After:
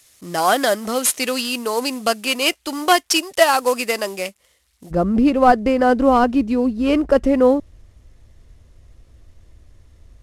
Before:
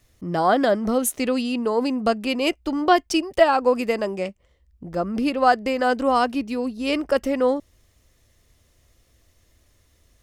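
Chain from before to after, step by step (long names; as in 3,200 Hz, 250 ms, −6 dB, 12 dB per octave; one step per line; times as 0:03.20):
variable-slope delta modulation 64 kbit/s
spectral tilt +3.5 dB per octave, from 0:04.90 −2.5 dB per octave
level +3.5 dB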